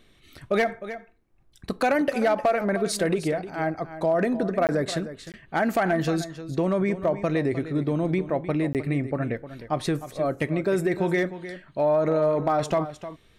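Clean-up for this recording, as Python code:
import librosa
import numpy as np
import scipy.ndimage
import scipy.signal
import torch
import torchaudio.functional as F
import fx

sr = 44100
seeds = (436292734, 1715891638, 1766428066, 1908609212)

y = fx.fix_declip(x, sr, threshold_db=-15.0)
y = fx.fix_interpolate(y, sr, at_s=(4.67, 5.32, 8.73), length_ms=18.0)
y = fx.fix_echo_inverse(y, sr, delay_ms=307, level_db=-13.0)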